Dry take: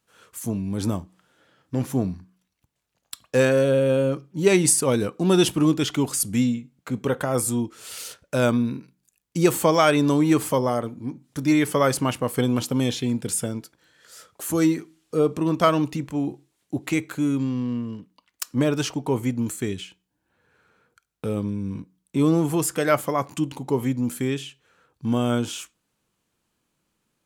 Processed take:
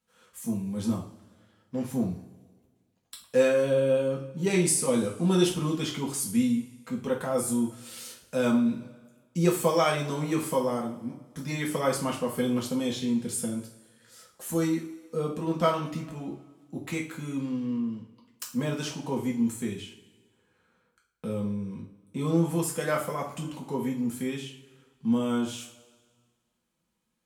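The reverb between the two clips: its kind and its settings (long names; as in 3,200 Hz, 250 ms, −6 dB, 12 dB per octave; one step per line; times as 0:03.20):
coupled-rooms reverb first 0.37 s, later 1.6 s, from −18 dB, DRR −2.5 dB
level −10.5 dB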